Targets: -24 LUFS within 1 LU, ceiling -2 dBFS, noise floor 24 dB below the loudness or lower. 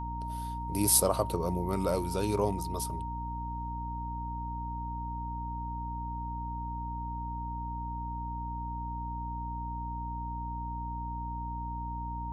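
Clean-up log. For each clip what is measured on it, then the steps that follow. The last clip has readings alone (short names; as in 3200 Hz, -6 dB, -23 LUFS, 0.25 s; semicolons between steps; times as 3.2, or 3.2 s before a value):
hum 60 Hz; harmonics up to 300 Hz; hum level -36 dBFS; steady tone 930 Hz; tone level -37 dBFS; loudness -34.0 LUFS; peak -10.0 dBFS; loudness target -24.0 LUFS
-> de-hum 60 Hz, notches 5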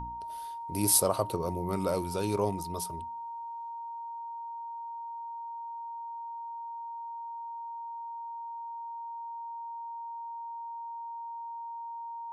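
hum none; steady tone 930 Hz; tone level -37 dBFS
-> notch 930 Hz, Q 30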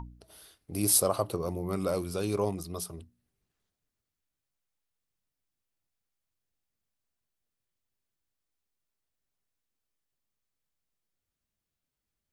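steady tone none; loudness -29.5 LUFS; peak -9.5 dBFS; loudness target -24.0 LUFS
-> gain +5.5 dB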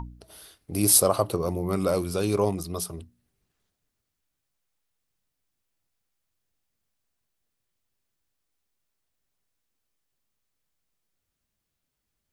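loudness -24.0 LUFS; peak -4.0 dBFS; noise floor -82 dBFS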